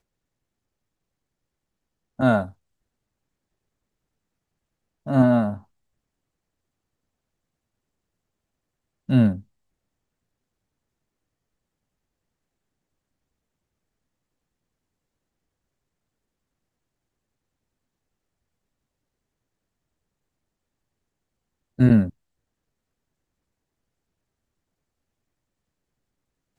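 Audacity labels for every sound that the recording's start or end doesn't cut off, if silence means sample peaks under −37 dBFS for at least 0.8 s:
2.190000	2.500000	sound
5.060000	5.580000	sound
9.090000	9.400000	sound
21.790000	22.100000	sound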